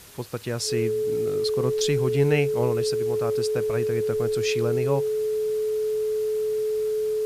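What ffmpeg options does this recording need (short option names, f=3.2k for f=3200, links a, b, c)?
-af "bandreject=f=430:w=30,afwtdn=0.0045"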